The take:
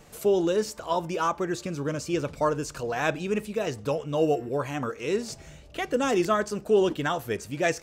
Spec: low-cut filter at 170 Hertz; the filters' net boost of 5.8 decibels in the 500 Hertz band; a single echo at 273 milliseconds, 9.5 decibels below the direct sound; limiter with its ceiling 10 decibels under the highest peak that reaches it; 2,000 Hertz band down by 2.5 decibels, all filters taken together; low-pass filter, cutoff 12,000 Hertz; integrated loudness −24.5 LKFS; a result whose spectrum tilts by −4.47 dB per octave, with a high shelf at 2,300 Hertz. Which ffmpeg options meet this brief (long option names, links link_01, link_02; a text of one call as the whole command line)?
ffmpeg -i in.wav -af "highpass=170,lowpass=12000,equalizer=frequency=500:width_type=o:gain=7.5,equalizer=frequency=2000:width_type=o:gain=-6.5,highshelf=frequency=2300:gain=5,alimiter=limit=-17dB:level=0:latency=1,aecho=1:1:273:0.335,volume=2.5dB" out.wav